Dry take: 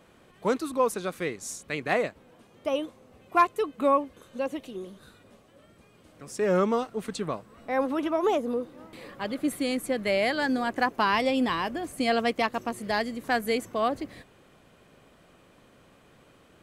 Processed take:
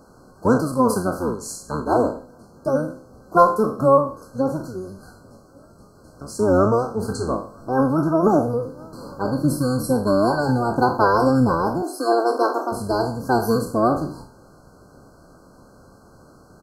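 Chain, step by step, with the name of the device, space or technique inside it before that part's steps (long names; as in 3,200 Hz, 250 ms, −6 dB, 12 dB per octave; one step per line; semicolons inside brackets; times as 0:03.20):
peak hold with a decay on every bin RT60 0.45 s
octave pedal (pitch-shifted copies added −12 semitones −3 dB)
dynamic equaliser 4,700 Hz, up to −6 dB, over −45 dBFS, Q 0.78
0:11.82–0:12.72: Butterworth high-pass 280 Hz 48 dB per octave
brick-wall band-stop 1,600–4,100 Hz
level +5.5 dB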